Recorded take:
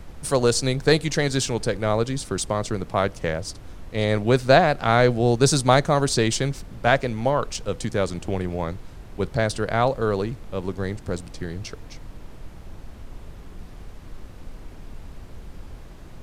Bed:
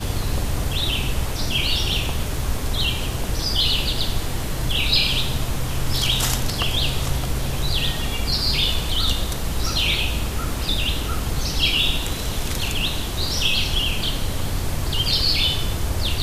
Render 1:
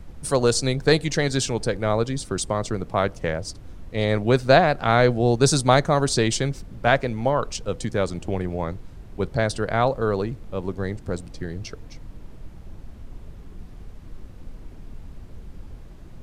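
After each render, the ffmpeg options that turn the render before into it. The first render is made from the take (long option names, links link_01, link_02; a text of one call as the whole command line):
ffmpeg -i in.wav -af "afftdn=noise_reduction=6:noise_floor=-42" out.wav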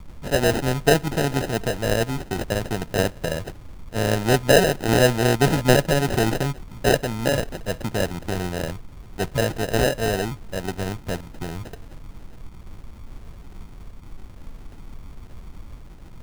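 ffmpeg -i in.wav -af "acrusher=samples=39:mix=1:aa=0.000001" out.wav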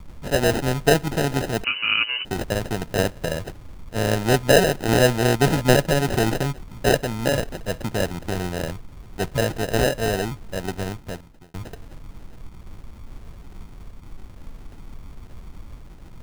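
ffmpeg -i in.wav -filter_complex "[0:a]asettb=1/sr,asplit=3[link_01][link_02][link_03];[link_01]atrim=end=1.644[link_04];[link_02]atrim=start=1.64:end=2.25,asetpts=PTS-STARTPTS,afade=type=in:duration=0.004:curve=qsin,afade=type=out:start_time=0.606:duration=0.004:curve=qsin,lowpass=frequency=2600:width_type=q:width=0.5098,lowpass=frequency=2600:width_type=q:width=0.6013,lowpass=frequency=2600:width_type=q:width=0.9,lowpass=frequency=2600:width_type=q:width=2.563,afreqshift=-3000[link_05];[link_03]atrim=start=2.246[link_06];[link_04][link_05]acrossfade=duration=0.004:curve1=hsin:curve2=qsin[link_07];[link_07][link_06]acrossfade=duration=0.004:curve1=qsin:curve2=hsin,asplit=2[link_08][link_09];[link_08]atrim=end=11.54,asetpts=PTS-STARTPTS,afade=type=out:start_time=10.78:duration=0.76[link_10];[link_09]atrim=start=11.54,asetpts=PTS-STARTPTS,afade=type=in:duration=0.004:curve=hsin[link_11];[link_10][link_11]concat=n=2:v=0:a=1" out.wav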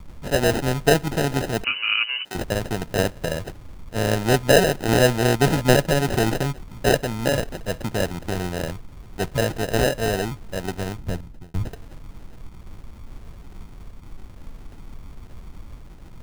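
ffmpeg -i in.wav -filter_complex "[0:a]asettb=1/sr,asplit=3[link_01][link_02][link_03];[link_01]atrim=end=1.824[link_04];[link_02]atrim=start=1.82:end=2.35,asetpts=PTS-STARTPTS,afade=type=in:duration=0.004:curve=qsin,afade=type=out:start_time=0.526:duration=0.004:curve=qsin,highpass=frequency=1100:poles=1[link_05];[link_03]atrim=start=2.346[link_06];[link_04][link_05]acrossfade=duration=0.004:curve1=hsin:curve2=qsin[link_07];[link_07][link_06]acrossfade=duration=0.004:curve1=qsin:curve2=hsin,asettb=1/sr,asplit=3[link_08][link_09][link_10];[link_08]atrim=end=10.984[link_11];[link_09]atrim=start=10.98:end=11.69,asetpts=PTS-STARTPTS,afade=type=in:duration=0.004:curve=qsin,afade=type=out:start_time=0.706:duration=0.004:curve=qsin,lowshelf=frequency=210:gain=11[link_12];[link_10]atrim=start=11.686[link_13];[link_11][link_12]acrossfade=duration=0.004:curve1=hsin:curve2=qsin[link_14];[link_14][link_13]acrossfade=duration=0.004:curve1=qsin:curve2=hsin" out.wav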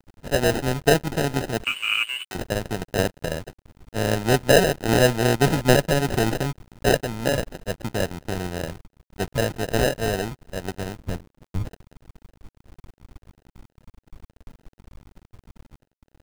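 ffmpeg -i in.wav -af "aeval=exprs='sgn(val(0))*max(abs(val(0))-0.0168,0)':channel_layout=same" out.wav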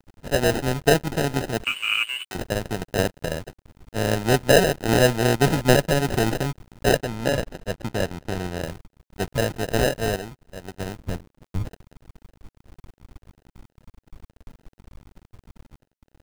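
ffmpeg -i in.wav -filter_complex "[0:a]asettb=1/sr,asplit=3[link_01][link_02][link_03];[link_01]atrim=end=6.974[link_04];[link_02]atrim=start=6.97:end=8.62,asetpts=PTS-STARTPTS,afade=type=in:duration=0.004:curve=qsin,afade=type=out:start_time=1.646:duration=0.004:curve=qsin,highshelf=frequency=8300:gain=-5.5[link_05];[link_03]atrim=start=8.616[link_06];[link_04][link_05]acrossfade=duration=0.004:curve1=hsin:curve2=qsin[link_07];[link_07][link_06]acrossfade=duration=0.004:curve1=qsin:curve2=hsin,asplit=3[link_08][link_09][link_10];[link_08]atrim=end=10.162[link_11];[link_09]atrim=start=10.158:end=10.802,asetpts=PTS-STARTPTS,volume=-7dB[link_12];[link_10]atrim=start=10.798[link_13];[link_11][link_12]acrossfade=duration=0.004:curve1=hsin:curve2=hsin[link_14];[link_14][link_13]acrossfade=duration=0.004:curve1=hsin:curve2=hsin" out.wav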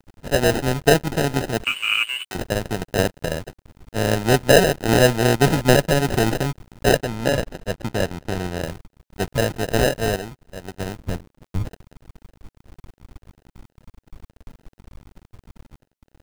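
ffmpeg -i in.wav -af "volume=2.5dB,alimiter=limit=-2dB:level=0:latency=1" out.wav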